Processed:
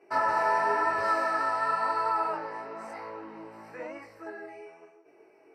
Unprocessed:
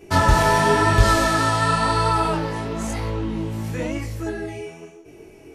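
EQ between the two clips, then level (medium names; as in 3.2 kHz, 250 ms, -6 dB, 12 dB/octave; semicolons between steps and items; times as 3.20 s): boxcar filter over 13 samples; high-pass 660 Hz 12 dB/octave; -4.0 dB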